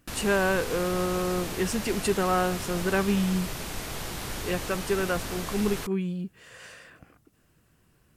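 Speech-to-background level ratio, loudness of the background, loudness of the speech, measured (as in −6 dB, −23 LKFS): 7.0 dB, −35.0 LKFS, −28.0 LKFS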